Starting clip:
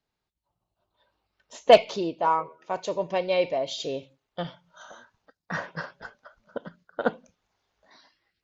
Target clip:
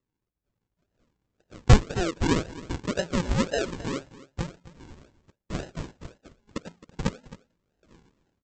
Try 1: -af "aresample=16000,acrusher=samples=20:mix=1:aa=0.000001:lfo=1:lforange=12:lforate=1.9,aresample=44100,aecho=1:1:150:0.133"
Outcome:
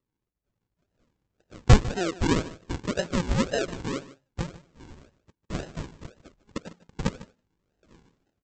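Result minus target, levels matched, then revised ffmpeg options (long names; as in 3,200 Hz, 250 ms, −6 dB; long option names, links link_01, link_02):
echo 115 ms early
-af "aresample=16000,acrusher=samples=20:mix=1:aa=0.000001:lfo=1:lforange=12:lforate=1.9,aresample=44100,aecho=1:1:265:0.133"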